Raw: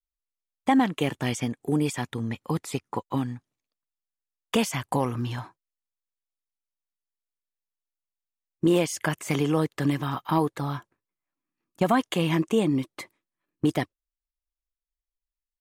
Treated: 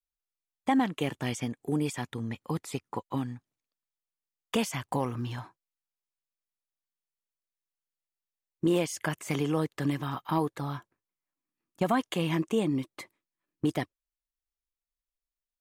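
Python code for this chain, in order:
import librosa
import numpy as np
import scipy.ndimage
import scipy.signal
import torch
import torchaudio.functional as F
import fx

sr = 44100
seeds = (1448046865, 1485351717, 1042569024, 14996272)

y = fx.median_filter(x, sr, points=3, at=(4.83, 5.32))
y = F.gain(torch.from_numpy(y), -4.5).numpy()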